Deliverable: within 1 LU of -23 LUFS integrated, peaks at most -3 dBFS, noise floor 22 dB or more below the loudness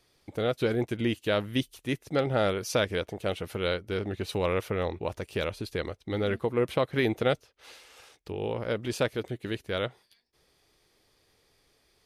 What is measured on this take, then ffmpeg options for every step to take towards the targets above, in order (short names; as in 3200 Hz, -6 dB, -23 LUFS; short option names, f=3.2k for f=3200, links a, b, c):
loudness -30.5 LUFS; peak -12.0 dBFS; loudness target -23.0 LUFS
-> -af "volume=7.5dB"